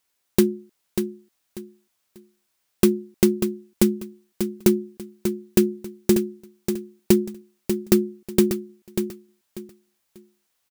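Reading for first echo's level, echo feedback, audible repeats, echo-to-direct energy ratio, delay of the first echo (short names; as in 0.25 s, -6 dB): -7.5 dB, 25%, 3, -7.0 dB, 0.591 s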